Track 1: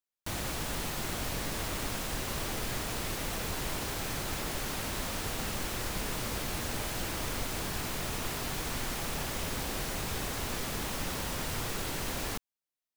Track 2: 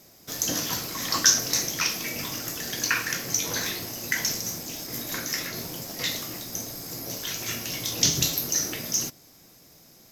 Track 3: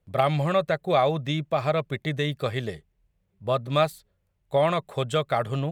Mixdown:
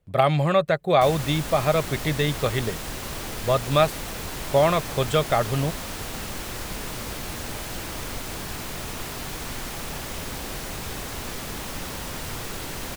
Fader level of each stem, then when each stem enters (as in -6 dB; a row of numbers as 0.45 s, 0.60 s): +2.0 dB, mute, +3.0 dB; 0.75 s, mute, 0.00 s